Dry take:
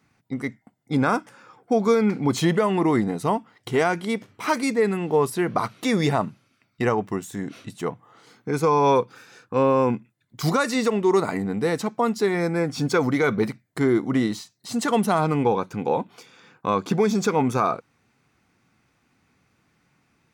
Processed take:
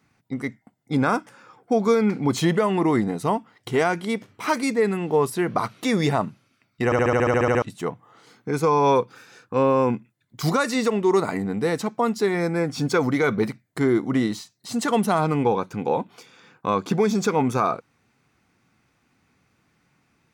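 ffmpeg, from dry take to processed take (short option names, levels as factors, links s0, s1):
-filter_complex "[0:a]asplit=12[s0][s1][s2][s3][s4][s5][s6][s7][s8][s9][s10][s11];[s0]atrim=end=6.922[s12];[s1]atrim=start=6.848:end=6.922[s13];[s2]atrim=start=6.848:end=6.922[s14];[s3]atrim=start=6.848:end=6.922[s15];[s4]atrim=start=6.848:end=6.922[s16];[s5]atrim=start=6.848:end=6.922[s17];[s6]atrim=start=6.848:end=6.922[s18];[s7]atrim=start=6.848:end=6.922[s19];[s8]atrim=start=6.848:end=6.922[s20];[s9]atrim=start=6.848:end=6.922[s21];[s10]atrim=start=6.848:end=6.922[s22];[s11]atrim=start=7.618[s23];[s12][s13]acrossfade=d=0.004:c1=hsin:c2=hsin[s24];[s24][s14]acrossfade=d=0.004:c1=hsin:c2=hsin[s25];[s25][s15]acrossfade=d=0.004:c1=hsin:c2=hsin[s26];[s26][s16]acrossfade=d=0.004:c1=hsin:c2=hsin[s27];[s27][s17]acrossfade=d=0.004:c1=hsin:c2=hsin[s28];[s28][s18]acrossfade=d=0.004:c1=hsin:c2=hsin[s29];[s29][s19]acrossfade=d=0.004:c1=hsin:c2=hsin[s30];[s30][s20]acrossfade=d=0.004:c1=hsin:c2=hsin[s31];[s31][s21]acrossfade=d=0.004:c1=hsin:c2=hsin[s32];[s32][s22]acrossfade=d=0.004:c1=hsin:c2=hsin[s33];[s33][s23]acrossfade=d=0.004:c1=hsin:c2=hsin"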